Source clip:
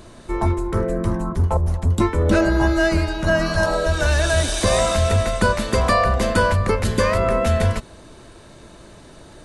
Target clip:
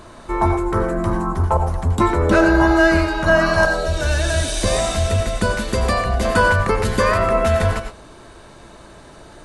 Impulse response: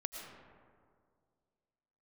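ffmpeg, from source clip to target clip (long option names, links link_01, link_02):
-filter_complex "[0:a]asetnsamples=nb_out_samples=441:pad=0,asendcmd='3.65 equalizer g -3.5;6.25 equalizer g 5',equalizer=frequency=1100:width=0.82:gain=8[link_01];[1:a]atrim=start_sample=2205,atrim=end_sample=6615,asetrate=52920,aresample=44100[link_02];[link_01][link_02]afir=irnorm=-1:irlink=0,volume=3.5dB"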